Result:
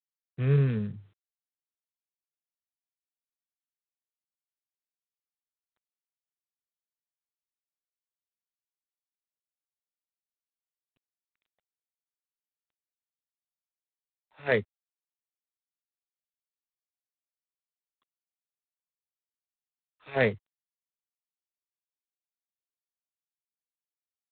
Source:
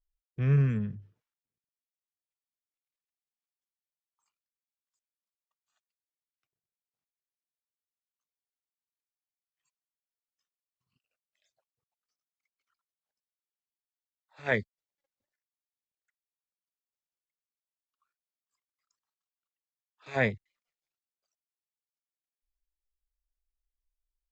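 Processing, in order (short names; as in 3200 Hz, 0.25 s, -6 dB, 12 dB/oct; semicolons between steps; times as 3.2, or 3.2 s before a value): HPF 76 Hz 24 dB/oct; dynamic EQ 450 Hz, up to +7 dB, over -45 dBFS, Q 2.3; G.726 24 kbps 8000 Hz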